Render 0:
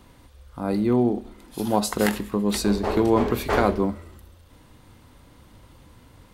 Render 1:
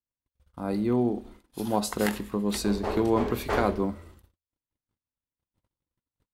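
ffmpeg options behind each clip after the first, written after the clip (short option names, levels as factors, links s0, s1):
-af "agate=range=0.00501:threshold=0.00631:ratio=16:detection=peak,volume=0.596"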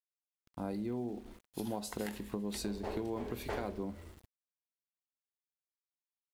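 -af "equalizer=f=1200:t=o:w=0.43:g=-6.5,acompressor=threshold=0.0224:ratio=6,aeval=exprs='val(0)*gte(abs(val(0)),0.00188)':c=same,volume=0.794"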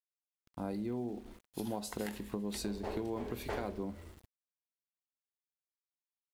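-af anull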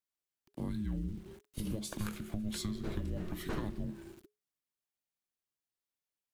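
-af "afreqshift=-420,volume=1.12"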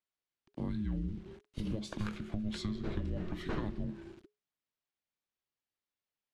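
-af "lowpass=4400,volume=1.12"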